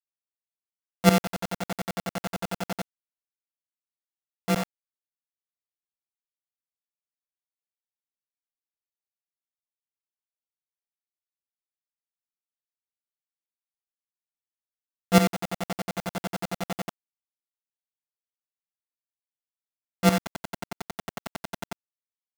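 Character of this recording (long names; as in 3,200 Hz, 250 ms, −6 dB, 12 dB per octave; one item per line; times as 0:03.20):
a buzz of ramps at a fixed pitch in blocks of 64 samples
tremolo saw up 11 Hz, depth 90%
a quantiser's noise floor 6 bits, dither none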